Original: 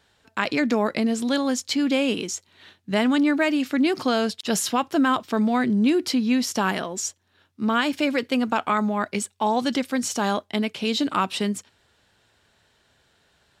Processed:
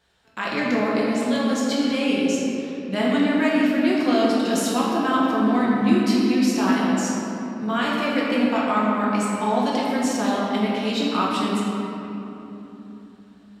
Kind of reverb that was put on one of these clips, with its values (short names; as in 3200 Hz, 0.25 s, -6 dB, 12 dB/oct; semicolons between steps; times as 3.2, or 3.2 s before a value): shoebox room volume 190 m³, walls hard, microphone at 0.96 m; gain -6 dB